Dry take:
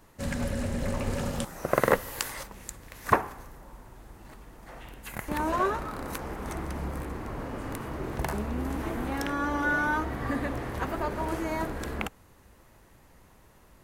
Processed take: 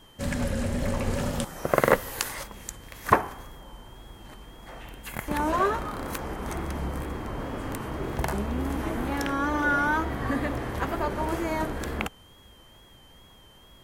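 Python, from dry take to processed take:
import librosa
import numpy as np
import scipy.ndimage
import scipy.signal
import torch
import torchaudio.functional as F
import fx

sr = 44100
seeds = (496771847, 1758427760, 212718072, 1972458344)

y = x + 10.0 ** (-58.0 / 20.0) * np.sin(2.0 * np.pi * 3200.0 * np.arange(len(x)) / sr)
y = fx.wow_flutter(y, sr, seeds[0], rate_hz=2.1, depth_cents=49.0)
y = y * 10.0 ** (2.5 / 20.0)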